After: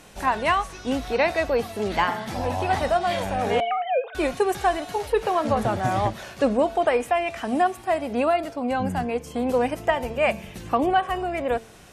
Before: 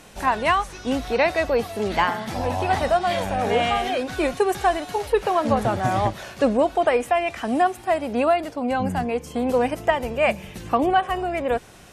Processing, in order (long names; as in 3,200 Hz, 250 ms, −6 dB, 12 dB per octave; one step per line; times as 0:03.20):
0:03.60–0:04.15: three sine waves on the formant tracks
hum removal 224.8 Hz, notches 24
level −1.5 dB